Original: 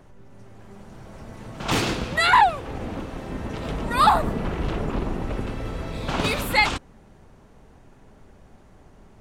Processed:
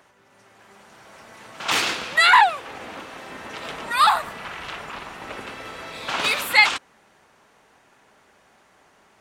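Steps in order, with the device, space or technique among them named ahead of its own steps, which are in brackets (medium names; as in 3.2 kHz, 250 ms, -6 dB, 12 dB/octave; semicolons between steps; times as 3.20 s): filter by subtraction (in parallel: low-pass 1.8 kHz 12 dB/octave + polarity flip); 3.91–5.22 s: on the sum: peaking EQ 340 Hz -8.5 dB 1.9 oct; trim +3.5 dB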